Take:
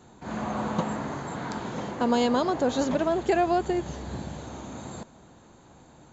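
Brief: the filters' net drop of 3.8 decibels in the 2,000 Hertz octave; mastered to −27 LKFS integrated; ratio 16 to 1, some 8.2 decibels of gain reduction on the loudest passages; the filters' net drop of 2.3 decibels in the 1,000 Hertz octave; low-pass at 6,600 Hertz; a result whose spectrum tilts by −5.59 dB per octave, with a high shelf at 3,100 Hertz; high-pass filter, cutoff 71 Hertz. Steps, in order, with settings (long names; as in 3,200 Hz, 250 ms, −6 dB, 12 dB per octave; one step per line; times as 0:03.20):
high-pass filter 71 Hz
low-pass filter 6,600 Hz
parametric band 1,000 Hz −3 dB
parametric band 2,000 Hz −5.5 dB
high-shelf EQ 3,100 Hz +5 dB
downward compressor 16 to 1, threshold −28 dBFS
level +7.5 dB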